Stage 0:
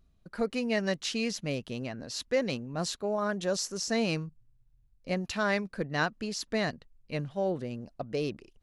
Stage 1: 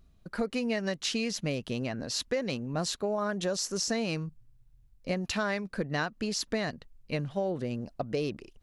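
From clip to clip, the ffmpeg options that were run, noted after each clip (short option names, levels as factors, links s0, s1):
-af "acompressor=threshold=0.0251:ratio=6,volume=1.78"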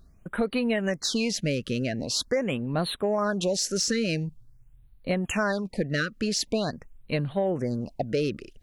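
-af "asoftclip=type=tanh:threshold=0.112,afftfilt=real='re*(1-between(b*sr/1024,820*pow(6500/820,0.5+0.5*sin(2*PI*0.45*pts/sr))/1.41,820*pow(6500/820,0.5+0.5*sin(2*PI*0.45*pts/sr))*1.41))':imag='im*(1-between(b*sr/1024,820*pow(6500/820,0.5+0.5*sin(2*PI*0.45*pts/sr))/1.41,820*pow(6500/820,0.5+0.5*sin(2*PI*0.45*pts/sr))*1.41))':win_size=1024:overlap=0.75,volume=1.88"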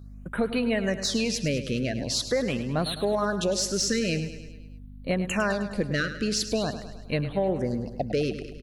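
-filter_complex "[0:a]aeval=exprs='val(0)+0.00794*(sin(2*PI*50*n/s)+sin(2*PI*2*50*n/s)/2+sin(2*PI*3*50*n/s)/3+sin(2*PI*4*50*n/s)/4+sin(2*PI*5*50*n/s)/5)':c=same,asplit=2[s0][s1];[s1]aecho=0:1:104|208|312|416|520|624:0.266|0.149|0.0834|0.0467|0.0262|0.0147[s2];[s0][s2]amix=inputs=2:normalize=0"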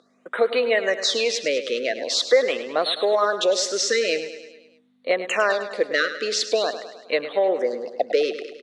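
-af "highpass=f=350:w=0.5412,highpass=f=350:w=1.3066,equalizer=f=490:t=q:w=4:g=8,equalizer=f=690:t=q:w=4:g=4,equalizer=f=1200:t=q:w=4:g=6,equalizer=f=2000:t=q:w=4:g=8,equalizer=f=3600:t=q:w=4:g=9,lowpass=f=8100:w=0.5412,lowpass=f=8100:w=1.3066,volume=1.33"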